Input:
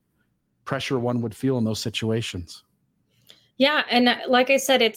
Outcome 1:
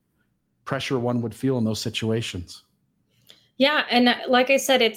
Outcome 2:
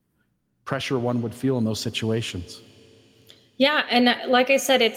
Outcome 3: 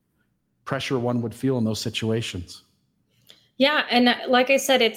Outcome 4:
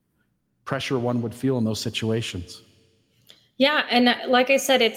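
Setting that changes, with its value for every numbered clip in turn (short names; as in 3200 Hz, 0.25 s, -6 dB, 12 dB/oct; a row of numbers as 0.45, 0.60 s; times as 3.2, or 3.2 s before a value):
Schroeder reverb, RT60: 0.35, 4.5, 0.73, 1.8 s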